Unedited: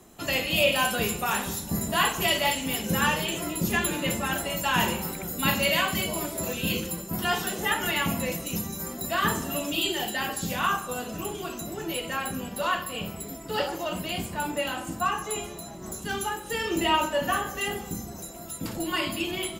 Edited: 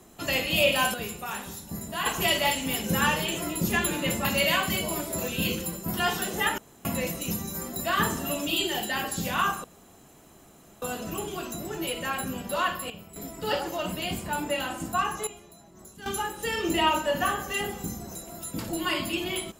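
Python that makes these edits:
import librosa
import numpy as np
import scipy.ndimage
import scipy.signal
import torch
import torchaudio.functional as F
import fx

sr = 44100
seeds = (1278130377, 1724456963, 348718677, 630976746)

y = fx.edit(x, sr, fx.clip_gain(start_s=0.94, length_s=1.12, db=-7.5),
    fx.cut(start_s=4.25, length_s=1.25),
    fx.room_tone_fill(start_s=7.83, length_s=0.27),
    fx.insert_room_tone(at_s=10.89, length_s=1.18),
    fx.clip_gain(start_s=12.97, length_s=0.26, db=-10.5),
    fx.clip_gain(start_s=15.34, length_s=0.79, db=-12.0), tone=tone)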